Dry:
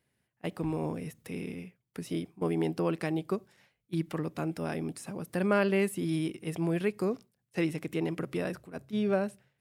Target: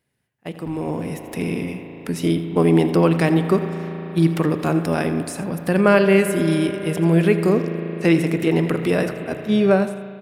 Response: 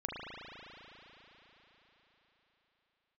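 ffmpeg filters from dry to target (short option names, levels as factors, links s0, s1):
-filter_complex "[0:a]aecho=1:1:79:0.188,atempo=0.94,asplit=2[s0][s1];[1:a]atrim=start_sample=2205[s2];[s1][s2]afir=irnorm=-1:irlink=0,volume=0.335[s3];[s0][s3]amix=inputs=2:normalize=0,dynaudnorm=f=690:g=3:m=3.98"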